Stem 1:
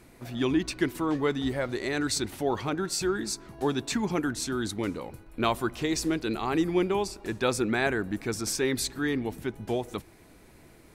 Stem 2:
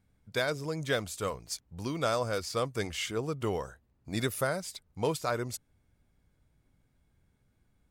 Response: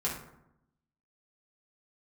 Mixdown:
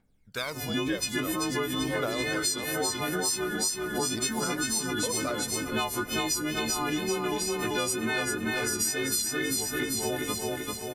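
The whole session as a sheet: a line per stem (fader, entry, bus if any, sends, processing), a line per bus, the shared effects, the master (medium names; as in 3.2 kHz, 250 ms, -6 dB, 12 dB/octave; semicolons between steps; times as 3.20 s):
+2.0 dB, 0.35 s, no send, echo send -4.5 dB, partials quantised in pitch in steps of 3 st; vibrato 2.1 Hz 45 cents
-1.0 dB, 0.00 s, muted 2.66–4.09 s, no send, echo send -24 dB, peaking EQ 90 Hz -12.5 dB 1.8 oct; phaser 0.49 Hz, delay 2 ms, feedback 64%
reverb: none
echo: feedback delay 389 ms, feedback 51%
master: compression, threshold -26 dBFS, peak gain reduction 12.5 dB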